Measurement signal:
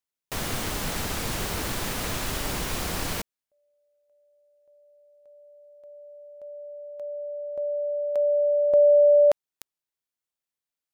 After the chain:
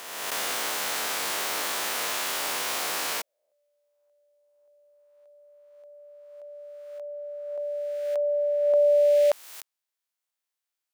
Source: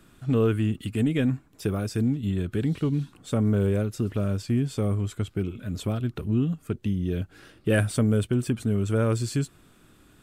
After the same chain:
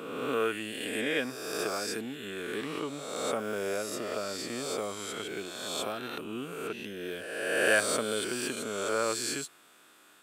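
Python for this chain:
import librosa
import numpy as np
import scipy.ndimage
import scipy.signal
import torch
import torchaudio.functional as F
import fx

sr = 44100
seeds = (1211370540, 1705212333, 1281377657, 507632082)

y = fx.spec_swells(x, sr, rise_s=1.54)
y = scipy.signal.sosfilt(scipy.signal.butter(2, 590.0, 'highpass', fs=sr, output='sos'), y)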